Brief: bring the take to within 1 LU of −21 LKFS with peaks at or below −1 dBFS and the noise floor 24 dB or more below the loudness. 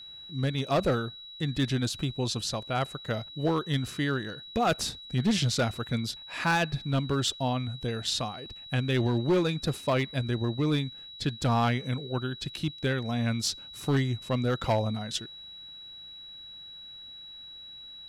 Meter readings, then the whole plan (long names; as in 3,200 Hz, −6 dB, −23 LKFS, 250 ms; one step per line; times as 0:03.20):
share of clipped samples 1.1%; peaks flattened at −19.5 dBFS; interfering tone 3,900 Hz; level of the tone −43 dBFS; integrated loudness −29.5 LKFS; sample peak −19.5 dBFS; target loudness −21.0 LKFS
→ clipped peaks rebuilt −19.5 dBFS
notch filter 3,900 Hz, Q 30
level +8.5 dB